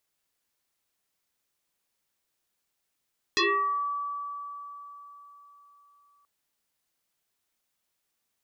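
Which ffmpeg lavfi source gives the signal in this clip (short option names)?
-f lavfi -i "aevalsrc='0.1*pow(10,-3*t/4.07)*sin(2*PI*1150*t+6.5*pow(10,-3*t/0.55)*sin(2*PI*0.65*1150*t))':d=2.88:s=44100"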